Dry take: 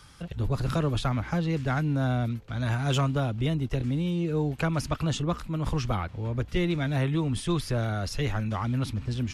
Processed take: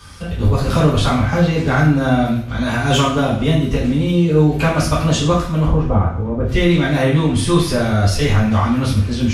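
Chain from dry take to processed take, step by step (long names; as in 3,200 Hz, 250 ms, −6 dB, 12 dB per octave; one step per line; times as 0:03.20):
0:05.65–0:06.44: low-pass filter 1,000 Hz 12 dB per octave
coupled-rooms reverb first 0.52 s, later 2.6 s, from −28 dB, DRR −7 dB
level +5.5 dB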